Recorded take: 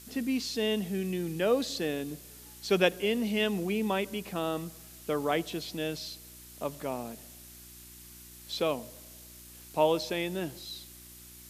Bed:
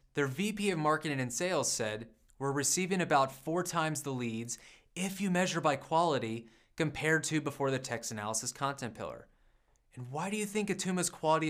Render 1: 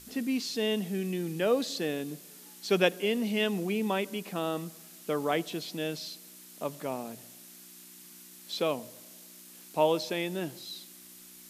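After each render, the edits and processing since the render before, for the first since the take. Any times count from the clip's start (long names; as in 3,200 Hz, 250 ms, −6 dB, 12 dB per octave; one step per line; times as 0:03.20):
hum removal 60 Hz, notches 2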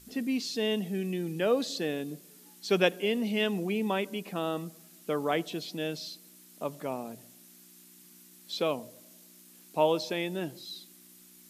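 broadband denoise 6 dB, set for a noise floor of −51 dBFS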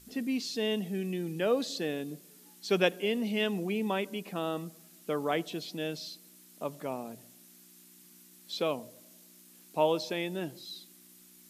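level −1.5 dB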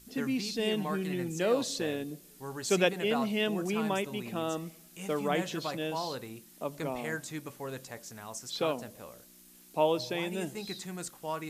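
mix in bed −7.5 dB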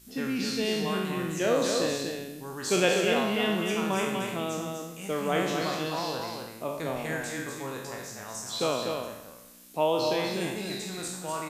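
peak hold with a decay on every bin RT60 0.89 s
on a send: single-tap delay 246 ms −5 dB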